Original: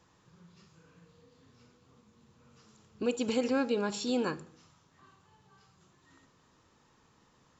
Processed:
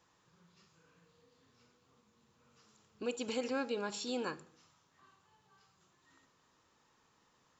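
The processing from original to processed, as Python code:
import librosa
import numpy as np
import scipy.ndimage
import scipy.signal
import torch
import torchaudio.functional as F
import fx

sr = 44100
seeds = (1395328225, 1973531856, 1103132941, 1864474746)

y = fx.low_shelf(x, sr, hz=340.0, db=-8.5)
y = F.gain(torch.from_numpy(y), -3.5).numpy()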